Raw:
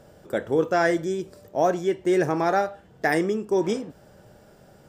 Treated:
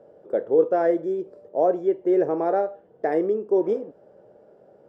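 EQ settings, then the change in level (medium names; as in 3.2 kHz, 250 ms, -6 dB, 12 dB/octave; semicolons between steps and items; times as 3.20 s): band-pass filter 480 Hz, Q 2.2; +5.0 dB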